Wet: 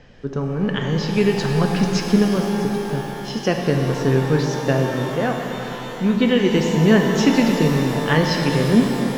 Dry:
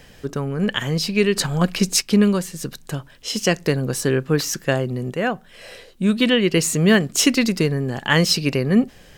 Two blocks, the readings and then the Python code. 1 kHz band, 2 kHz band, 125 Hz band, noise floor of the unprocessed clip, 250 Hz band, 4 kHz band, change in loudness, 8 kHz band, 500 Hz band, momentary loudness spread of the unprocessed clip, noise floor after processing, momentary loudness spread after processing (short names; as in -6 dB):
+4.5 dB, -1.5 dB, +2.5 dB, -48 dBFS, +2.0 dB, -4.5 dB, +0.5 dB, -9.5 dB, +2.0 dB, 11 LU, -31 dBFS, 9 LU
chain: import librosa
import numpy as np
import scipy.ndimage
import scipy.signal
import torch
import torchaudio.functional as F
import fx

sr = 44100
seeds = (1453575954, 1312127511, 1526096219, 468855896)

y = scipy.signal.sosfilt(scipy.signal.butter(6, 6400.0, 'lowpass', fs=sr, output='sos'), x)
y = fx.high_shelf(y, sr, hz=2100.0, db=-10.0)
y = fx.rev_shimmer(y, sr, seeds[0], rt60_s=3.8, semitones=12, shimmer_db=-8, drr_db=1.5)